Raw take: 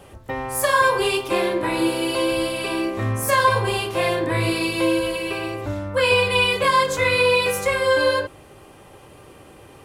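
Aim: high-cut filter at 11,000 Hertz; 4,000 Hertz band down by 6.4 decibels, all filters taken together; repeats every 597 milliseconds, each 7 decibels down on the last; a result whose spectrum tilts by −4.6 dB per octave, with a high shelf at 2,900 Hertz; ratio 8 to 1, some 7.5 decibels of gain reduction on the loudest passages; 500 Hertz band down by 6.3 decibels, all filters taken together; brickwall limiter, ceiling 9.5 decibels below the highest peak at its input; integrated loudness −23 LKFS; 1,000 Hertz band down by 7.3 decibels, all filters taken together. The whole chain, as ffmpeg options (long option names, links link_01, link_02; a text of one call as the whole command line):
ffmpeg -i in.wav -af "lowpass=11000,equalizer=frequency=500:width_type=o:gain=-5.5,equalizer=frequency=1000:width_type=o:gain=-6,highshelf=frequency=2900:gain=-3,equalizer=frequency=4000:width_type=o:gain=-6,acompressor=threshold=-27dB:ratio=8,alimiter=level_in=3dB:limit=-24dB:level=0:latency=1,volume=-3dB,aecho=1:1:597|1194|1791|2388|2985:0.447|0.201|0.0905|0.0407|0.0183,volume=11dB" out.wav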